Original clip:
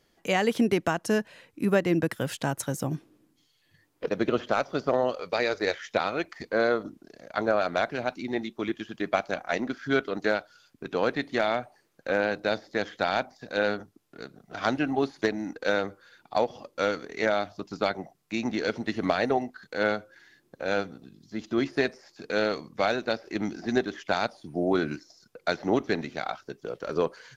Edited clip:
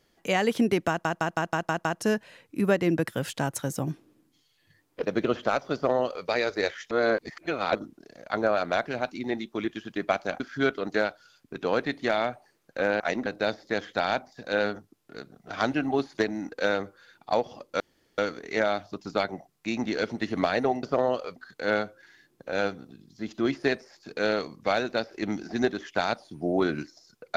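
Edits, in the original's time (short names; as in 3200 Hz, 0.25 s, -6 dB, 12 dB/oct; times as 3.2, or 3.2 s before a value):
0.89 stutter 0.16 s, 7 plays
4.78–5.31 copy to 19.49
5.95–6.79 reverse
9.44–9.7 move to 12.3
16.84 insert room tone 0.38 s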